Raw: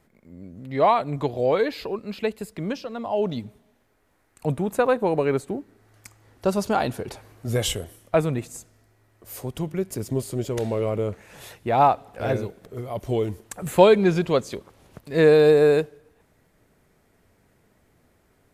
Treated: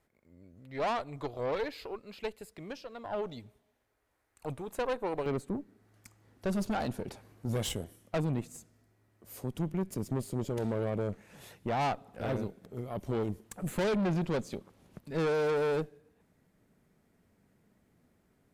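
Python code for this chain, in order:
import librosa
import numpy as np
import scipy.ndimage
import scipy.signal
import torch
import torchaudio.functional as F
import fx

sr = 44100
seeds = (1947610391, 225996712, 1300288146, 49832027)

y = fx.peak_eq(x, sr, hz=200.0, db=fx.steps((0.0, -7.0), (5.26, 8.5)), octaves=1.1)
y = fx.tube_stage(y, sr, drive_db=21.0, bias=0.7)
y = F.gain(torch.from_numpy(y), -6.0).numpy()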